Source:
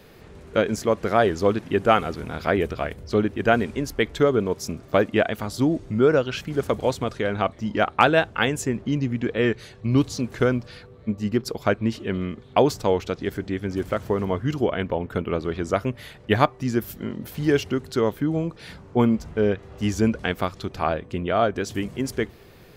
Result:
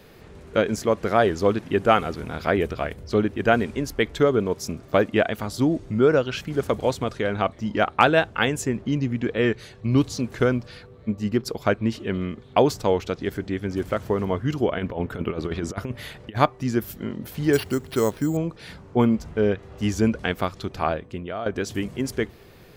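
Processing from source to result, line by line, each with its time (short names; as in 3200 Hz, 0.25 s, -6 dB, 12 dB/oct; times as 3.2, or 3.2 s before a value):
14.77–16.37 negative-ratio compressor -27 dBFS, ratio -0.5
17.53–18.37 careless resampling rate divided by 6×, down none, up hold
20.85–21.46 fade out linear, to -13.5 dB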